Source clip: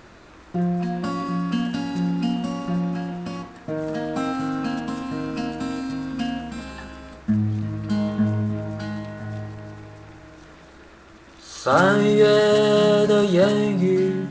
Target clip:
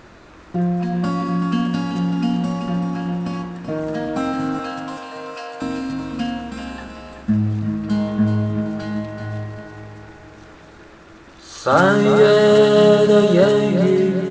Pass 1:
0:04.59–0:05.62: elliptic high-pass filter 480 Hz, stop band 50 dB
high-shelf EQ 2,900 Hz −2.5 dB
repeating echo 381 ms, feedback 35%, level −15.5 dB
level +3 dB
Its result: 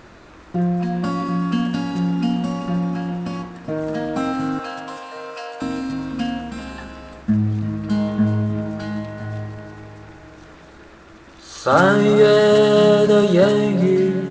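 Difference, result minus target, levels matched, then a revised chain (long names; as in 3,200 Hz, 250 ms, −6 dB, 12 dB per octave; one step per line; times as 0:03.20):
echo-to-direct −7 dB
0:04.59–0:05.62: elliptic high-pass filter 480 Hz, stop band 50 dB
high-shelf EQ 2,900 Hz −2.5 dB
repeating echo 381 ms, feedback 35%, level −8.5 dB
level +3 dB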